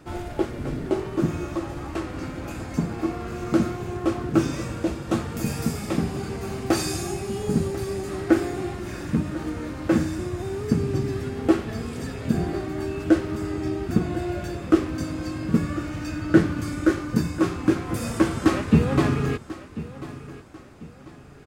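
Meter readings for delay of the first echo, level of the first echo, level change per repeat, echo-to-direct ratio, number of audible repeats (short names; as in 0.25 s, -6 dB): 1.042 s, -16.0 dB, -9.0 dB, -15.5 dB, 2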